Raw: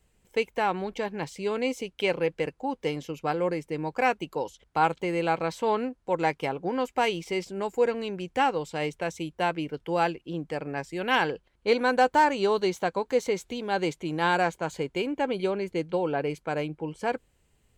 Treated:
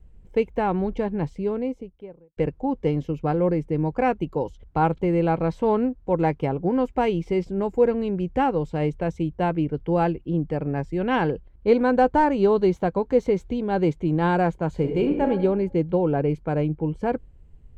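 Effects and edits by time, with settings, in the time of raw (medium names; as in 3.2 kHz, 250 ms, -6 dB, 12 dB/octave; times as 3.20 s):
1.03–2.37 s: studio fade out
14.73–15.28 s: reverb throw, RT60 0.87 s, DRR 3.5 dB
whole clip: tilt EQ -4.5 dB/octave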